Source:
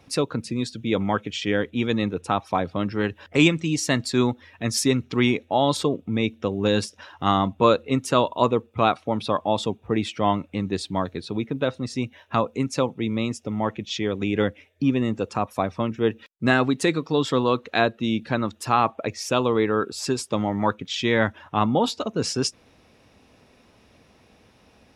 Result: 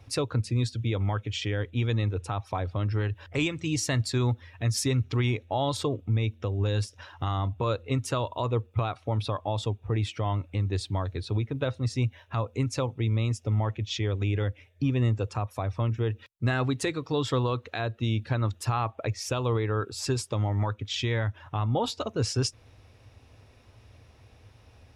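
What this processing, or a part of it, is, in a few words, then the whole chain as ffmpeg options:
car stereo with a boomy subwoofer: -af "lowshelf=f=140:t=q:w=3:g=8,alimiter=limit=-14.5dB:level=0:latency=1:release=194,volume=-3dB"

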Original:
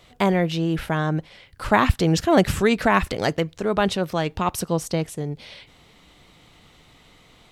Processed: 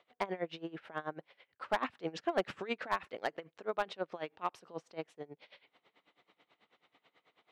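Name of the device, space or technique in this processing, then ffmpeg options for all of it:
helicopter radio: -af "highpass=390,lowpass=2.7k,aeval=exprs='val(0)*pow(10,-21*(0.5-0.5*cos(2*PI*9.2*n/s))/20)':c=same,asoftclip=type=hard:threshold=-14.5dB,volume=-8dB"

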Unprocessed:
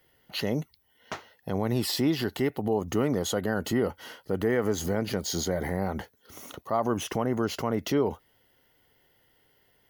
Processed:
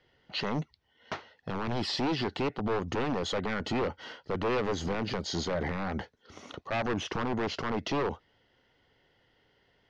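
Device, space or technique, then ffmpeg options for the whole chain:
synthesiser wavefolder: -af "aeval=exprs='0.0668*(abs(mod(val(0)/0.0668+3,4)-2)-1)':c=same,lowpass=f=5.2k:w=0.5412,lowpass=f=5.2k:w=1.3066"

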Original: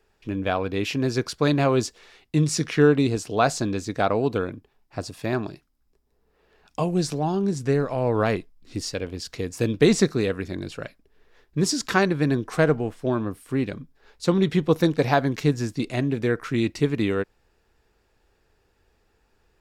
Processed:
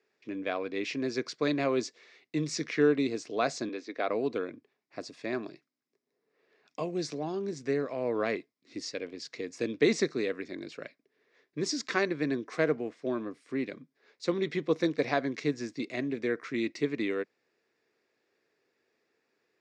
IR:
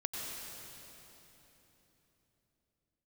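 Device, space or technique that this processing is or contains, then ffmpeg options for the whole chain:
television speaker: -filter_complex "[0:a]highpass=f=180:w=0.5412,highpass=f=180:w=1.3066,equalizer=f=190:t=q:w=4:g=-9,equalizer=f=850:t=q:w=4:g=-9,equalizer=f=1.4k:t=q:w=4:g=-4,equalizer=f=2.1k:t=q:w=4:g=6,equalizer=f=3k:t=q:w=4:g=-5,lowpass=f=6.5k:w=0.5412,lowpass=f=6.5k:w=1.3066,asettb=1/sr,asplit=3[a][b][c];[a]atrim=end=3.694[d];[b]atrim=start=3.69:end=4.09,asetpts=PTS-STARTPTS,afade=t=in:d=0.004:c=qsin,afade=t=out:st=0.396:d=0.004:c=qsin,acrossover=split=250 5000:gain=0.0891 1 0.0708[e][f][g];[e][f][g]amix=inputs=3:normalize=0[h];[c]atrim=start=4.086[i];[d][h]acrossfade=d=0.004:c1=hsin:c2=qsin[j];[j][i]acrossfade=d=0.004:c1=qsin:c2=hsin,volume=-6dB"

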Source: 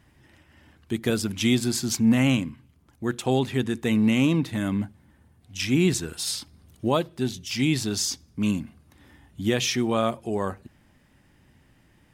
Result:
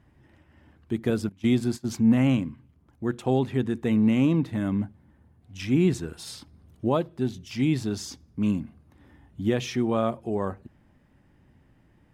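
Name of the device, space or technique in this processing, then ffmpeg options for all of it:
through cloth: -filter_complex "[0:a]highshelf=f=2.1k:g=-13,asettb=1/sr,asplit=3[a][b][c];[a]atrim=end=1.294[d];[b]atrim=start=1.29:end=1.86,asetpts=PTS-STARTPTS,afade=t=in:d=0.004:c=qsin,afade=t=out:st=0.566:d=0.004:c=qsin,agate=range=-19dB:threshold=-28dB:ratio=16:detection=peak[e];[c]atrim=start=1.856[f];[d][e]acrossfade=d=0.004:c1=hsin:c2=qsin[g];[g][f]acrossfade=d=0.004:c1=qsin:c2=hsin"

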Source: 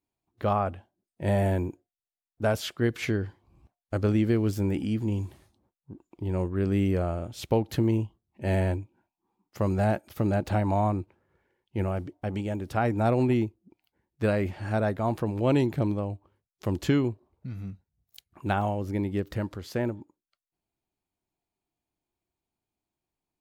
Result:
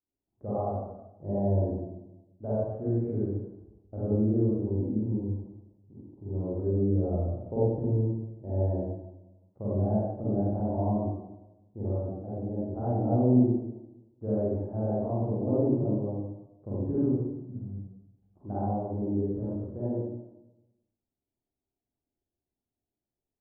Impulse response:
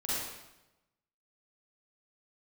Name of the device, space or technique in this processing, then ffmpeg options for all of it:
next room: -filter_complex "[0:a]lowpass=f=700:w=0.5412,lowpass=f=700:w=1.3066[a];[1:a]atrim=start_sample=2205[b];[a][b]afir=irnorm=-1:irlink=0,volume=-7.5dB"

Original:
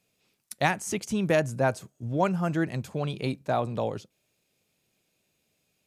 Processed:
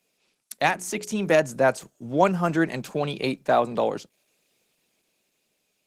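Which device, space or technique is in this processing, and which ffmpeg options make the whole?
video call: -filter_complex "[0:a]asplit=3[a][b][c];[a]afade=t=out:st=0.53:d=0.02[d];[b]bandreject=f=60:t=h:w=6,bandreject=f=120:t=h:w=6,bandreject=f=180:t=h:w=6,bandreject=f=240:t=h:w=6,bandreject=f=300:t=h:w=6,bandreject=f=360:t=h:w=6,bandreject=f=420:t=h:w=6,bandreject=f=480:t=h:w=6,afade=t=in:st=0.53:d=0.02,afade=t=out:st=1.31:d=0.02[e];[c]afade=t=in:st=1.31:d=0.02[f];[d][e][f]amix=inputs=3:normalize=0,highpass=f=140:w=0.5412,highpass=f=140:w=1.3066,highpass=f=260:p=1,dynaudnorm=f=250:g=11:m=4dB,volume=3.5dB" -ar 48000 -c:a libopus -b:a 16k

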